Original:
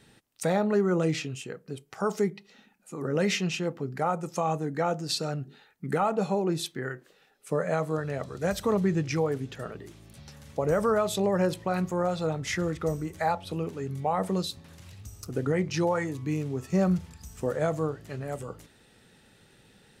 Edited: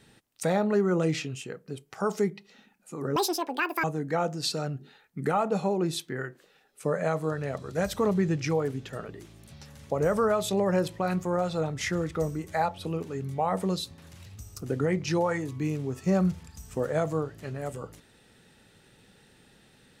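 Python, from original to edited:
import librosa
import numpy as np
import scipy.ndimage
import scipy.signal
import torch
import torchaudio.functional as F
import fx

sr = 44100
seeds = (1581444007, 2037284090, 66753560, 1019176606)

y = fx.edit(x, sr, fx.speed_span(start_s=3.16, length_s=1.34, speed=1.98), tone=tone)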